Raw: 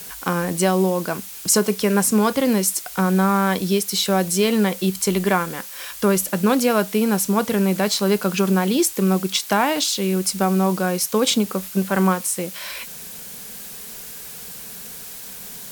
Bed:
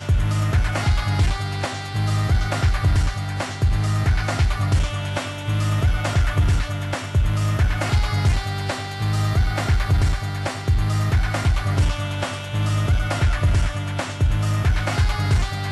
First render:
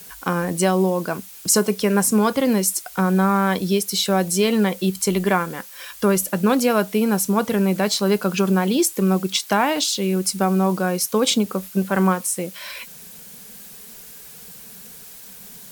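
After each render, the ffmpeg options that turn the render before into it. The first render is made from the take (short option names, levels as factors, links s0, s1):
-af "afftdn=nr=6:nf=-36"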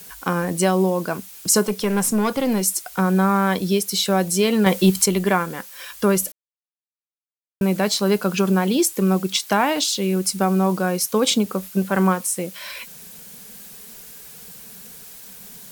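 -filter_complex "[0:a]asettb=1/sr,asplit=3[s0][s1][s2];[s0]atrim=end=1.674[s3];[s1]atrim=start=1.67:end=2.62,asetpts=PTS-STARTPTS,afade=t=in:d=0.004:c=qsin,afade=t=out:st=0.946:d=0.004:c=qsin,aeval=exprs='(tanh(4.47*val(0)+0.2)-tanh(0.2))/4.47':c=same[s4];[s2]atrim=start=2.616[s5];[s3][s4]acrossfade=d=0.004:c1=hsin:c2=qsin[s6];[s6][s5]acrossfade=d=0.004:c1=qsin:c2=hsin,asettb=1/sr,asplit=3[s7][s8][s9];[s7]atrim=end=4.664[s10];[s8]atrim=start=4.66:end=5.06,asetpts=PTS-STARTPTS,afade=t=in:d=0.004:c=qsin,afade=t=out:st=0.396:d=0.004:c=qsin,acontrast=65[s11];[s9]atrim=start=5.056[s12];[s10][s11]acrossfade=d=0.004:c1=hsin:c2=qsin[s13];[s13][s12]acrossfade=d=0.004:c1=qsin:c2=hsin,asplit=3[s14][s15][s16];[s14]atrim=end=6.32,asetpts=PTS-STARTPTS,afade=t=out:st=6.316:d=0.004:c=hsin[s17];[s15]atrim=start=6.32:end=7.61,asetpts=PTS-STARTPTS,volume=0[s18];[s16]atrim=start=7.61,asetpts=PTS-STARTPTS,afade=t=in:d=0.004:c=hsin[s19];[s17][s18][s19]concat=n=3:v=0:a=1"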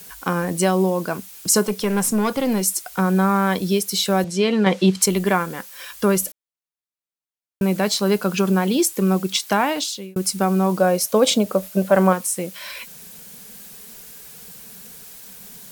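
-filter_complex "[0:a]asettb=1/sr,asplit=3[s0][s1][s2];[s0]atrim=end=4.244[s3];[s1]atrim=start=4.24:end=5.02,asetpts=PTS-STARTPTS,afade=t=in:d=0.004:c=qsin,afade=t=out:st=0.776:d=0.004:c=qsin,highpass=130,lowpass=4900[s4];[s2]atrim=start=5.016[s5];[s3][s4]acrossfade=d=0.004:c1=hsin:c2=qsin[s6];[s6][s5]acrossfade=d=0.004:c1=qsin:c2=hsin,asettb=1/sr,asplit=3[s7][s8][s9];[s7]atrim=end=10.794[s10];[s8]atrim=start=10.79:end=12.13,asetpts=PTS-STARTPTS,afade=t=in:d=0.004:c=qsin,afade=t=out:st=1.336:d=0.004:c=qsin,equalizer=f=610:t=o:w=0.43:g=13.5[s11];[s9]atrim=start=12.126[s12];[s10][s11]acrossfade=d=0.004:c1=hsin:c2=qsin[s13];[s13][s12]acrossfade=d=0.004:c1=qsin:c2=hsin,asplit=2[s14][s15];[s14]atrim=end=10.16,asetpts=PTS-STARTPTS,afade=t=out:st=9.46:d=0.7:c=qsin[s16];[s15]atrim=start=10.16,asetpts=PTS-STARTPTS,afade=t=in:d=0.004:c=hsin[s17];[s16][s17]concat=n=2:v=0:a=1"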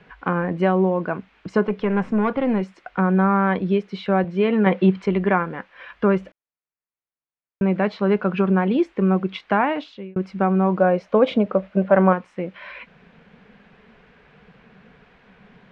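-af "lowpass=f=2400:w=0.5412,lowpass=f=2400:w=1.3066"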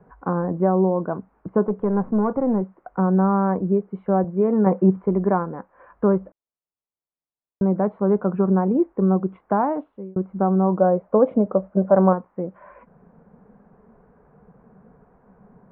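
-af "lowpass=f=1100:w=0.5412,lowpass=f=1100:w=1.3066"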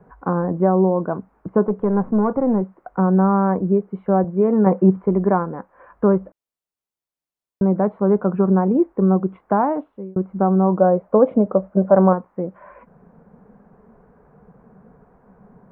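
-af "volume=1.33,alimiter=limit=0.794:level=0:latency=1"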